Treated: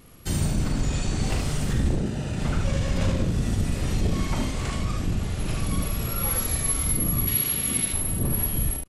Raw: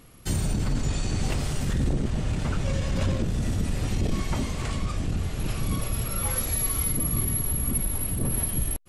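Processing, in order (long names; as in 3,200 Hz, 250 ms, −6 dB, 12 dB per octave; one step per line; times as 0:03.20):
0:07.27–0:07.93: meter weighting curve D
pitch vibrato 0.86 Hz 9 cents
0:01.95–0:02.38: notch comb filter 1,100 Hz
on a send: ambience of single reflections 40 ms −7 dB, 74 ms −5 dB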